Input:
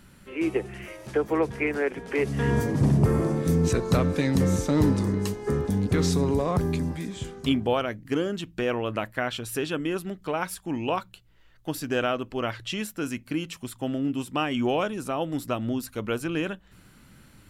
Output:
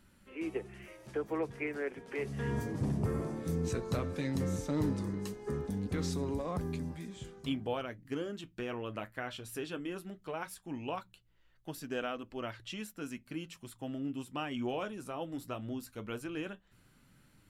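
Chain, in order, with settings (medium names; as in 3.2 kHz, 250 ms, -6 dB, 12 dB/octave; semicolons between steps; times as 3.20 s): flange 0.16 Hz, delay 3.1 ms, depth 7.7 ms, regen -60%; trim -7 dB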